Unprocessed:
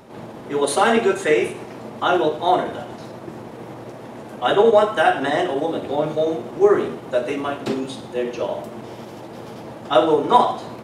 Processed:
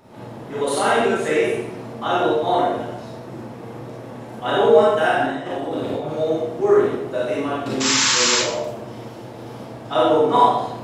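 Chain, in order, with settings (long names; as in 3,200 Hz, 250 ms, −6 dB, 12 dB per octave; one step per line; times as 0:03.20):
0:05.14–0:06.05: compressor whose output falls as the input rises −25 dBFS, ratio −0.5
0:07.80–0:08.37: sound drawn into the spectrogram noise 860–7,700 Hz −17 dBFS
convolution reverb RT60 0.75 s, pre-delay 29 ms, DRR −5.5 dB
level −7 dB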